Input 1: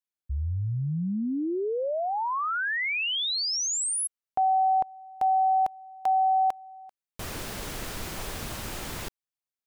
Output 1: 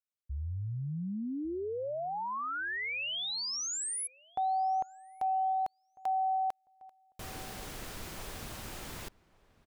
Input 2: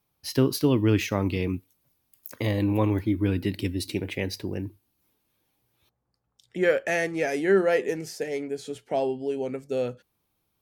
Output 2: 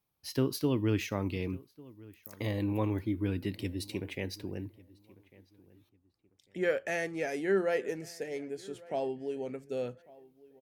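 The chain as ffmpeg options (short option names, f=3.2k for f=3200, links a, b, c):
-filter_complex "[0:a]asplit=2[a][b];[b]adelay=1148,lowpass=f=2.2k:p=1,volume=-22dB,asplit=2[c][d];[d]adelay=1148,lowpass=f=2.2k:p=1,volume=0.28[e];[a][c][e]amix=inputs=3:normalize=0,volume=-7.5dB"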